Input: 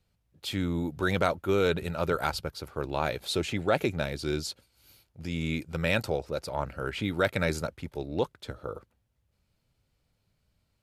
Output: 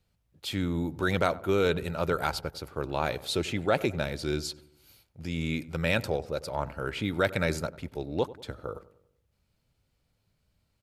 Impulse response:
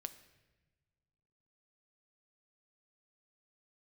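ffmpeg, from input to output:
-filter_complex "[0:a]asplit=2[s0][s1];[s1]adelay=95,lowpass=f=1400:p=1,volume=0.141,asplit=2[s2][s3];[s3]adelay=95,lowpass=f=1400:p=1,volume=0.52,asplit=2[s4][s5];[s5]adelay=95,lowpass=f=1400:p=1,volume=0.52,asplit=2[s6][s7];[s7]adelay=95,lowpass=f=1400:p=1,volume=0.52,asplit=2[s8][s9];[s9]adelay=95,lowpass=f=1400:p=1,volume=0.52[s10];[s0][s2][s4][s6][s8][s10]amix=inputs=6:normalize=0"

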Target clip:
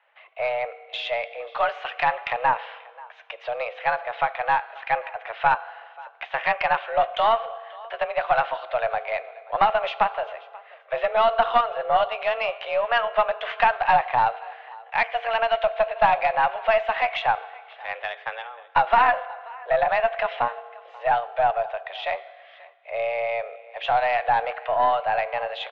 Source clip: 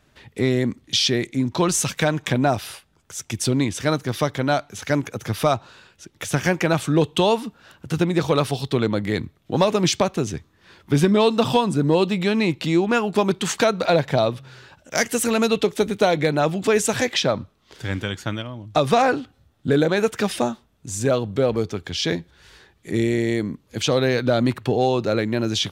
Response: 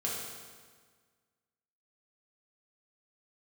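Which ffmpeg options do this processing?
-filter_complex "[0:a]highpass=f=380:t=q:w=0.5412,highpass=f=380:t=q:w=1.307,lowpass=f=2700:t=q:w=0.5176,lowpass=f=2700:t=q:w=0.7071,lowpass=f=2700:t=q:w=1.932,afreqshift=230,aecho=1:1:535:0.0841,asplit=2[s0][s1];[1:a]atrim=start_sample=2205,adelay=11[s2];[s1][s2]afir=irnorm=-1:irlink=0,volume=0.133[s3];[s0][s3]amix=inputs=2:normalize=0,aeval=exprs='0.501*(cos(1*acos(clip(val(0)/0.501,-1,1)))-cos(1*PI/2))+0.1*(cos(2*acos(clip(val(0)/0.501,-1,1)))-cos(2*PI/2))':c=same"

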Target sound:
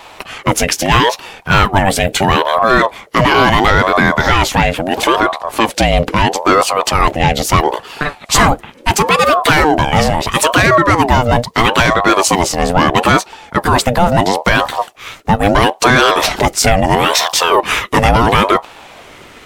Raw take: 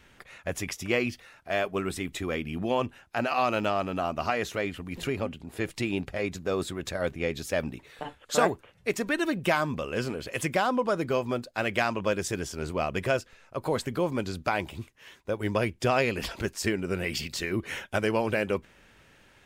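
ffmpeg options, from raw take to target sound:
-af "apsyclip=17.8,aeval=exprs='val(0)*sin(2*PI*620*n/s+620*0.45/0.75*sin(2*PI*0.75*n/s))':c=same,volume=0.841"

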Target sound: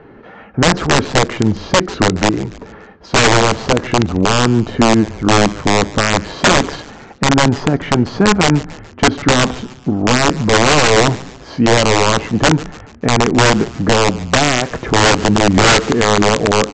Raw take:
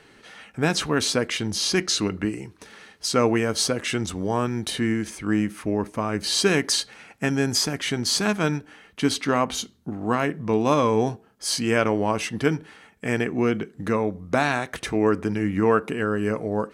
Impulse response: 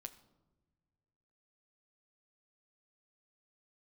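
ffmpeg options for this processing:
-filter_complex "[0:a]lowpass=1000,aresample=16000,aeval=exprs='(mod(7.08*val(0)+1,2)-1)/7.08':c=same,aresample=44100,asplit=5[s0][s1][s2][s3][s4];[s1]adelay=144,afreqshift=-130,volume=0.0944[s5];[s2]adelay=288,afreqshift=-260,volume=0.0462[s6];[s3]adelay=432,afreqshift=-390,volume=0.0226[s7];[s4]adelay=576,afreqshift=-520,volume=0.0111[s8];[s0][s5][s6][s7][s8]amix=inputs=5:normalize=0,alimiter=level_in=6.31:limit=0.891:release=50:level=0:latency=1,volume=0.891"

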